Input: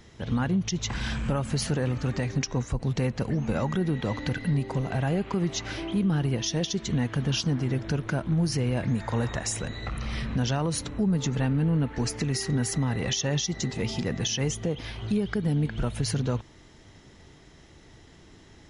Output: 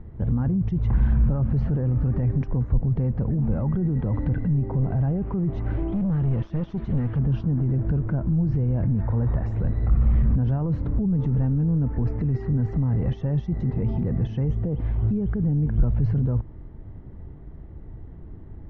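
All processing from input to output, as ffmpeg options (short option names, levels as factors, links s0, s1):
-filter_complex "[0:a]asettb=1/sr,asplit=3[s0][s1][s2];[s0]atrim=end=5.924[s3];[s1]atrim=start=5.92:end=7.19,asetpts=PTS-STARTPTS,afade=t=in:d=0.004:c=qsin,afade=t=out:st=1.266:d=0.004:c=qsin,equalizer=f=5600:w=0.32:g=14,acompressor=threshold=0.0631:ratio=4:attack=3.2:release=140:knee=1:detection=peak,asoftclip=type=hard:threshold=0.0316[s4];[s2]atrim=start=7.186[s5];[s3][s4]acrossfade=d=0.004:c1=hsin:c2=qsin[s6];[s6][s5]acrossfade=d=0.004:c1=qsin:c2=hsin,lowpass=1200,alimiter=level_in=1.33:limit=0.0631:level=0:latency=1:release=11,volume=0.75,aemphasis=mode=reproduction:type=riaa"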